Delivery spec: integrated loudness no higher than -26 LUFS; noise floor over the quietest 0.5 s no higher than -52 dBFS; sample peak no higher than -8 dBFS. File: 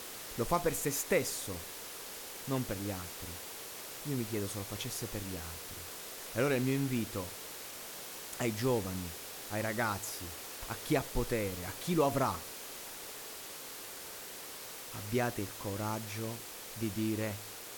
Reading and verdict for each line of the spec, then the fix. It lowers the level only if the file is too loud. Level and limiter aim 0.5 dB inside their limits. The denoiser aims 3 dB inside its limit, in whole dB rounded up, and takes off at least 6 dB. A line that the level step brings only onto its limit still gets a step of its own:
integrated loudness -36.5 LUFS: OK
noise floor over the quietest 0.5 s -46 dBFS: fail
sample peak -16.5 dBFS: OK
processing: denoiser 9 dB, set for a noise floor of -46 dBFS

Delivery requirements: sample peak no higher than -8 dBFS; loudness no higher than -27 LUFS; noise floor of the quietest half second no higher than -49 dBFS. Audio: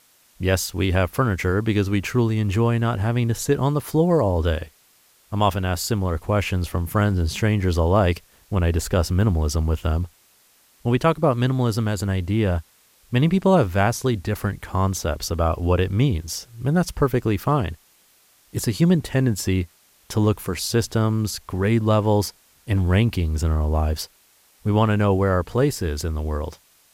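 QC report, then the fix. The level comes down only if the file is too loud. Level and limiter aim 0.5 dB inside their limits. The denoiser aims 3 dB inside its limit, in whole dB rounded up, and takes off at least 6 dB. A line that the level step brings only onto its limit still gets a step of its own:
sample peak -5.5 dBFS: fail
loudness -22.0 LUFS: fail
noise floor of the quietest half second -58 dBFS: OK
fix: gain -5.5 dB

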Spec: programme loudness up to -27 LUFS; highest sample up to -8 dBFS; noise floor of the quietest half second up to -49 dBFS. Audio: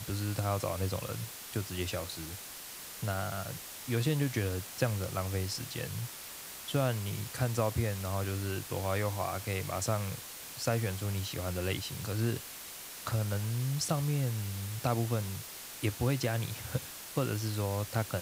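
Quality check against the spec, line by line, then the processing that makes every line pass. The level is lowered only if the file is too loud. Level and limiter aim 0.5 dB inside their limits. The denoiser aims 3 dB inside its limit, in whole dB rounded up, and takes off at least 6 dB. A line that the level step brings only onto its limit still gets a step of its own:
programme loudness -34.5 LUFS: OK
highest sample -14.5 dBFS: OK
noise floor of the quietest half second -45 dBFS: fail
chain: denoiser 7 dB, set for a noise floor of -45 dBFS

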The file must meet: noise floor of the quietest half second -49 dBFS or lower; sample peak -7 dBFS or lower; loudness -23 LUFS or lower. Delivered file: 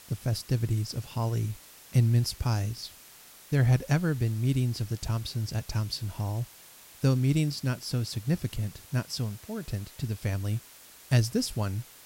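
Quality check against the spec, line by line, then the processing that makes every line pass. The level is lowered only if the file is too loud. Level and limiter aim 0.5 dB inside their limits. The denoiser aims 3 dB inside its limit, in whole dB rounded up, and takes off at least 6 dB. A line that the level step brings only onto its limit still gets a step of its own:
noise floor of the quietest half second -52 dBFS: OK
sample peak -11.5 dBFS: OK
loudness -29.5 LUFS: OK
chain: none

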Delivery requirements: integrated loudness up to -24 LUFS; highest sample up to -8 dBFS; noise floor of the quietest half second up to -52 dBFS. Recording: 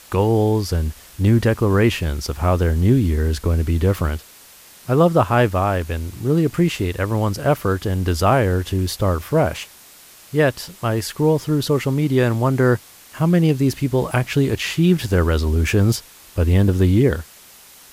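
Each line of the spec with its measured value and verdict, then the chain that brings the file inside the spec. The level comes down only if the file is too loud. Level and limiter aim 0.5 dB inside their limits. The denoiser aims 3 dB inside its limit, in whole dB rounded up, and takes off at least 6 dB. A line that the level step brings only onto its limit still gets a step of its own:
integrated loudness -19.0 LUFS: fail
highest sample -3.5 dBFS: fail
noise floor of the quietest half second -45 dBFS: fail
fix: denoiser 6 dB, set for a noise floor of -45 dBFS; gain -5.5 dB

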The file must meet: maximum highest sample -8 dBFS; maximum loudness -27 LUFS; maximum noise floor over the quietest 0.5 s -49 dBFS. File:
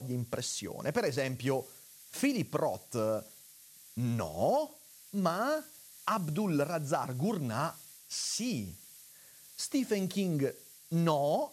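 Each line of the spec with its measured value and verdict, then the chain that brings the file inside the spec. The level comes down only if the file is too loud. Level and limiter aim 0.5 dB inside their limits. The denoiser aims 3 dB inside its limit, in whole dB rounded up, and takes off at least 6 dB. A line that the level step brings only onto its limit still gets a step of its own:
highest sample -15.5 dBFS: OK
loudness -33.5 LUFS: OK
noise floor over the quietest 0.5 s -56 dBFS: OK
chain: none

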